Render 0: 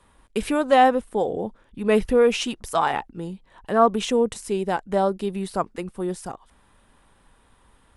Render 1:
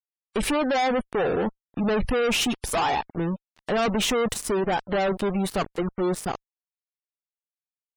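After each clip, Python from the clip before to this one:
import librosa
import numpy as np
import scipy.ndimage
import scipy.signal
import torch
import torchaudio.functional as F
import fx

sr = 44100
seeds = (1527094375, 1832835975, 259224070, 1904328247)

y = fx.fuzz(x, sr, gain_db=33.0, gate_db=-40.0)
y = fx.spec_gate(y, sr, threshold_db=-30, keep='strong')
y = y * 10.0 ** (-8.0 / 20.0)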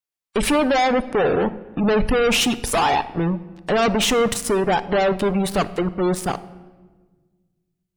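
y = fx.room_shoebox(x, sr, seeds[0], volume_m3=1200.0, walls='mixed', distance_m=0.35)
y = y * 10.0 ** (5.0 / 20.0)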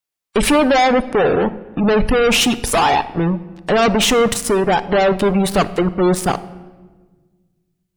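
y = fx.rider(x, sr, range_db=3, speed_s=2.0)
y = y * 10.0 ** (4.0 / 20.0)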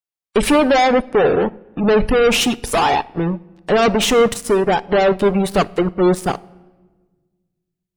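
y = fx.peak_eq(x, sr, hz=420.0, db=2.5, octaves=0.77)
y = fx.upward_expand(y, sr, threshold_db=-30.0, expansion=1.5)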